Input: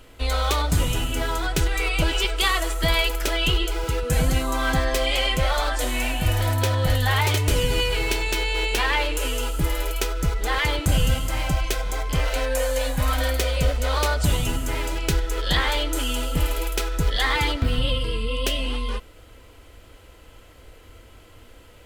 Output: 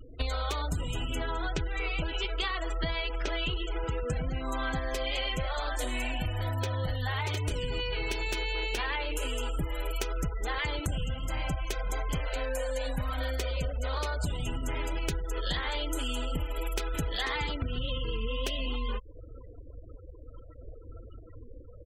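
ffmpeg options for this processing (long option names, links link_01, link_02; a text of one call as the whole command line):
ffmpeg -i in.wav -filter_complex "[0:a]asettb=1/sr,asplit=3[link_01][link_02][link_03];[link_01]atrim=end=1.244[link_04];[link_02]atrim=start=1.24:end=4.43,asetpts=PTS-STARTPTS,afade=type=in:duration=0.004:curve=qsin,afade=type=out:start_time=3.186:duration=0.004:curve=qsin,equalizer=frequency=13000:width=0.52:gain=-11[link_05];[link_03]atrim=start=4.426[link_06];[link_04][link_05]acrossfade=duration=0.004:curve1=hsin:curve2=qsin[link_07];[link_07][link_06]acrossfade=duration=0.004:curve1=qsin:curve2=hsin,asplit=3[link_08][link_09][link_10];[link_08]afade=type=out:start_time=12.98:duration=0.02[link_11];[link_09]aecho=1:1:111:0.126,afade=type=in:start_time=12.98:duration=0.02,afade=type=out:start_time=15.27:duration=0.02[link_12];[link_10]afade=type=in:start_time=15.27:duration=0.02[link_13];[link_11][link_12][link_13]amix=inputs=3:normalize=0,asplit=2[link_14][link_15];[link_15]afade=type=in:start_time=16.45:duration=0.01,afade=type=out:start_time=17:duration=0.01,aecho=0:1:490|980|1470|1960:0.595662|0.178699|0.0536096|0.0160829[link_16];[link_14][link_16]amix=inputs=2:normalize=0,acompressor=threshold=-30dB:ratio=20,afftfilt=real='re*gte(hypot(re,im),0.00891)':imag='im*gte(hypot(re,im),0.00891)':win_size=1024:overlap=0.75,volume=2.5dB" out.wav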